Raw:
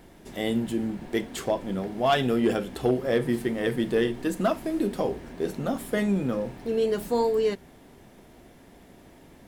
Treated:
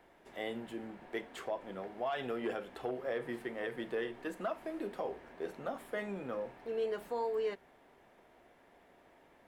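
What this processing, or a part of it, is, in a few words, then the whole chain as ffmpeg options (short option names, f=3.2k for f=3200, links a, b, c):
DJ mixer with the lows and highs turned down: -filter_complex "[0:a]acrossover=split=440 2800:gain=0.178 1 0.224[a][b][c];[a][b][c]amix=inputs=3:normalize=0,alimiter=limit=-21.5dB:level=0:latency=1:release=102,volume=-5.5dB"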